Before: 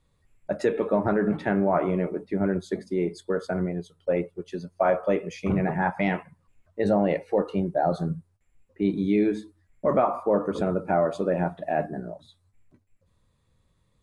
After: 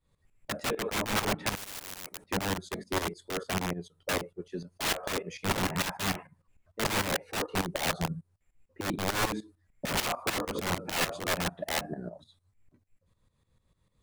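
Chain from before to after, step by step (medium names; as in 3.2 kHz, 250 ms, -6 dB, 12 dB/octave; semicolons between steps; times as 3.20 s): integer overflow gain 20.5 dB; tremolo saw up 6.7 Hz, depth 80%; 1.55–2.26 s: spectrum-flattening compressor 4:1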